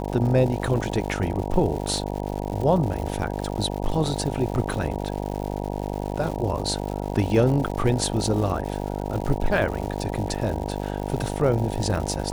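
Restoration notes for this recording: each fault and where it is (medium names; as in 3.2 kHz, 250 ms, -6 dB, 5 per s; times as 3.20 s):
buzz 50 Hz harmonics 19 -29 dBFS
crackle 220 per s -31 dBFS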